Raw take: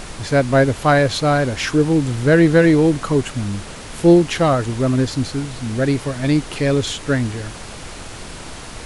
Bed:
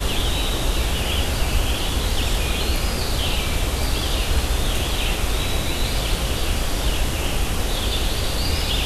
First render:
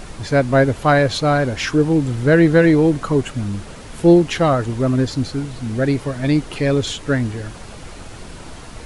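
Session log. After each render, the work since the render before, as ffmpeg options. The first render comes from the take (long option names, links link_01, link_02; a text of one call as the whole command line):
ffmpeg -i in.wav -af "afftdn=noise_reduction=6:noise_floor=-34" out.wav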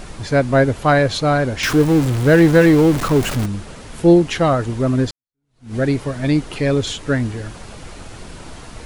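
ffmpeg -i in.wav -filter_complex "[0:a]asettb=1/sr,asplit=3[link_01][link_02][link_03];[link_01]atrim=end=1.634[link_04];[link_02]atrim=start=1.63:end=3.46,asetpts=PTS-STARTPTS,afade=type=in:duration=0.004:curve=qsin,afade=type=out:start_time=1.826:duration=0.004:curve=qsin,aeval=exprs='val(0)+0.5*0.1*sgn(val(0))':channel_layout=same[link_05];[link_03]atrim=start=3.456[link_06];[link_04][link_05]acrossfade=duration=0.004:curve1=hsin:curve2=qsin[link_07];[link_07][link_06]acrossfade=duration=0.004:curve1=qsin:curve2=hsin,asplit=2[link_08][link_09];[link_08]atrim=end=5.11,asetpts=PTS-STARTPTS,afade=type=out:start_time=5.106:duration=0.004:curve=hsin[link_10];[link_09]atrim=start=5.11,asetpts=PTS-STARTPTS,afade=type=in:duration=0.64:curve=exp[link_11];[link_10][link_11]concat=n=2:v=0:a=1" out.wav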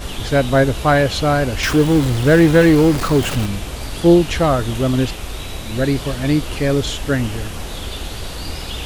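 ffmpeg -i in.wav -i bed.wav -filter_complex "[1:a]volume=-6dB[link_01];[0:a][link_01]amix=inputs=2:normalize=0" out.wav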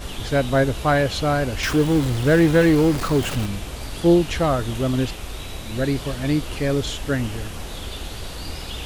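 ffmpeg -i in.wav -af "volume=-4.5dB" out.wav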